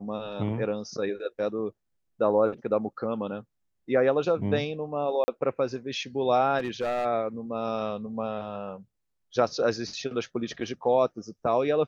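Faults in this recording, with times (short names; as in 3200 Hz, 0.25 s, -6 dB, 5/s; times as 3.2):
5.24–5.28 gap 40 ms
6.58–7.06 clipped -24.5 dBFS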